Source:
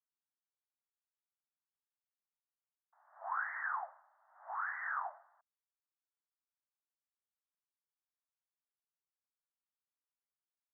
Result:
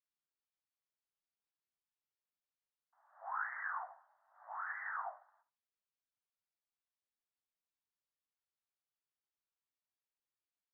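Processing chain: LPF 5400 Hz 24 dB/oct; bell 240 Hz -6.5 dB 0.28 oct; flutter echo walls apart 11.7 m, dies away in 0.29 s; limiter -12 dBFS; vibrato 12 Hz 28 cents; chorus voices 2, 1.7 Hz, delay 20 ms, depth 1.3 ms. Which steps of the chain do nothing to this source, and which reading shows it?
LPF 5400 Hz: input band ends at 2200 Hz; bell 240 Hz: input band starts at 540 Hz; limiter -12 dBFS: input peak -26.0 dBFS

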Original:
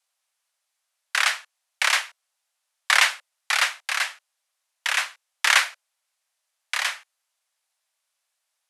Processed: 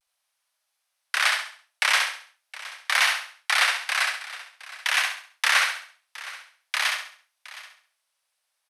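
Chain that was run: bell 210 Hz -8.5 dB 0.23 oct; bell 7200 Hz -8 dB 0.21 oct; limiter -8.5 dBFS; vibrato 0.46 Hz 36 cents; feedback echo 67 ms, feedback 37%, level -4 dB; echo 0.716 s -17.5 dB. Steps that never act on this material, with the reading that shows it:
bell 210 Hz: input band starts at 450 Hz

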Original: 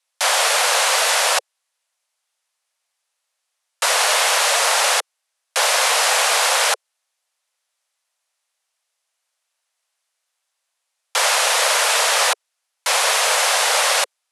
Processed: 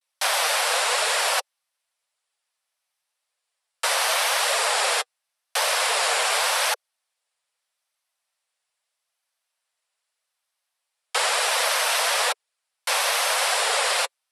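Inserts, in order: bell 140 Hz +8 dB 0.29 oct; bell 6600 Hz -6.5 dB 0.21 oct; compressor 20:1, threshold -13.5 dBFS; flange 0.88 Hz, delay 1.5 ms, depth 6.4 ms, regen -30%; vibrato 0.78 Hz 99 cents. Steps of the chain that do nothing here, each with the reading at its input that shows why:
bell 140 Hz: input band starts at 360 Hz

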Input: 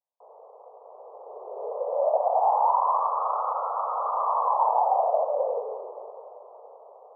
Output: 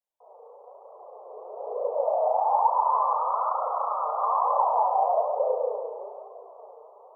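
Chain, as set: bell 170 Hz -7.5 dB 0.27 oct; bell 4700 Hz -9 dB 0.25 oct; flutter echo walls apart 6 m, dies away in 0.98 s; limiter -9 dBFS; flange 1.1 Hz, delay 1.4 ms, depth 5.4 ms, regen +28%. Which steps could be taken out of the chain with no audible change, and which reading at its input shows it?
bell 170 Hz: input band starts at 380 Hz; bell 4700 Hz: input band ends at 1400 Hz

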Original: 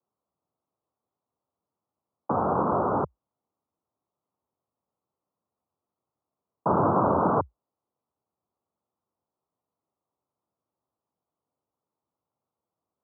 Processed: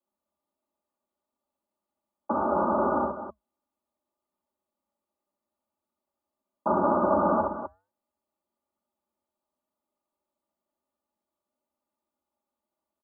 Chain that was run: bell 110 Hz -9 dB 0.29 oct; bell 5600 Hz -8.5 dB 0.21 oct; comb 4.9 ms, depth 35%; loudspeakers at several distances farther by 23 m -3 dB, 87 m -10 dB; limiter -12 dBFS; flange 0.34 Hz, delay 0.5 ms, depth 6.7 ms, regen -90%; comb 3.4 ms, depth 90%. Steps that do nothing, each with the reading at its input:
bell 5600 Hz: input band ends at 1600 Hz

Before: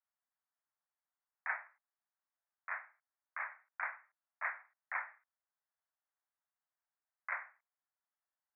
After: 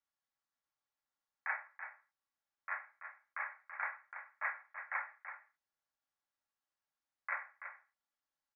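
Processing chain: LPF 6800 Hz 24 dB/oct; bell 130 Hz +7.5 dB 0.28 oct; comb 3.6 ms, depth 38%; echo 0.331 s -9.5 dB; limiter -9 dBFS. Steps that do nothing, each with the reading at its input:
LPF 6800 Hz: input band ends at 2700 Hz; bell 130 Hz: input band starts at 510 Hz; limiter -9 dBFS: input peak -23.0 dBFS

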